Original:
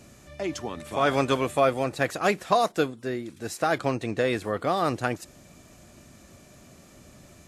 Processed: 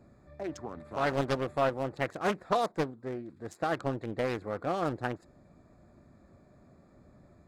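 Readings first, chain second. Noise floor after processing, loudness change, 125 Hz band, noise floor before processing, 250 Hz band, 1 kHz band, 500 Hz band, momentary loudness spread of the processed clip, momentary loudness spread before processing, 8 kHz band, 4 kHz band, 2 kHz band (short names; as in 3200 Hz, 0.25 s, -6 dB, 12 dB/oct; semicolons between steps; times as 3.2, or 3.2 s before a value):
-61 dBFS, -6.5 dB, -4.5 dB, -53 dBFS, -6.0 dB, -6.5 dB, -6.5 dB, 11 LU, 11 LU, -12.5 dB, -9.0 dB, -7.5 dB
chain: Wiener smoothing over 15 samples; Doppler distortion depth 0.5 ms; gain -6 dB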